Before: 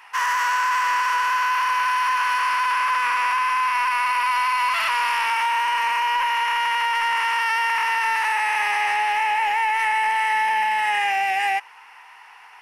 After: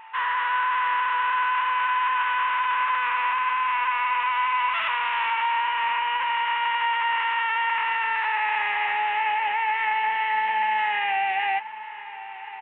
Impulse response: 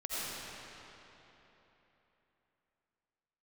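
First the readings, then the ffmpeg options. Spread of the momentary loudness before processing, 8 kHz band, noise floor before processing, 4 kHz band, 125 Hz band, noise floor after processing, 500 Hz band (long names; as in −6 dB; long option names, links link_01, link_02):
1 LU, below −40 dB, −46 dBFS, −4.0 dB, can't be measured, −37 dBFS, −3.0 dB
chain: -filter_complex "[0:a]highpass=frequency=57:poles=1,lowshelf=frequency=110:gain=5,aeval=exprs='val(0)+0.0126*sin(2*PI*890*n/s)':channel_layout=same,asplit=2[link_01][link_02];[link_02]adelay=14,volume=-13dB[link_03];[link_01][link_03]amix=inputs=2:normalize=0,aecho=1:1:1046|2092|3138|4184|5230:0.158|0.084|0.0445|0.0236|0.0125,aresample=8000,aresample=44100,volume=-3.5dB"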